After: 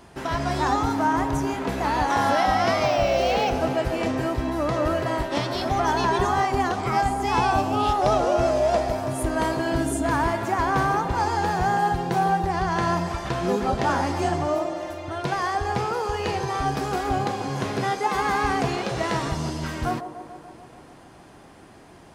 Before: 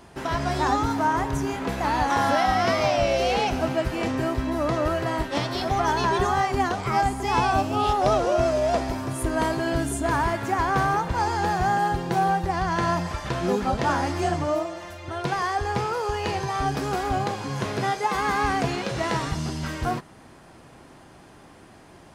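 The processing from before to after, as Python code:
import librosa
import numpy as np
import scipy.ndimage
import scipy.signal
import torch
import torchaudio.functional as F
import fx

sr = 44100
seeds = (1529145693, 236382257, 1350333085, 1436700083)

y = fx.echo_wet_bandpass(x, sr, ms=145, feedback_pct=68, hz=480.0, wet_db=-8.0)
y = fx.resample_linear(y, sr, factor=2, at=(2.85, 3.55))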